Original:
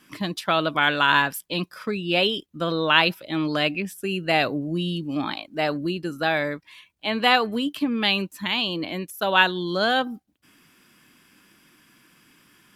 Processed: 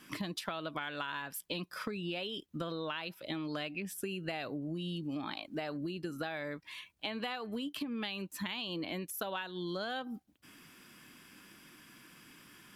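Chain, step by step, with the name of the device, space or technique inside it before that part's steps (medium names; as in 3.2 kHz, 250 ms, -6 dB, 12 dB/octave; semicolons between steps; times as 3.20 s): serial compression, peaks first (compression, threshold -29 dBFS, peak gain reduction 16.5 dB; compression 3:1, threshold -37 dBFS, peak gain reduction 8.5 dB)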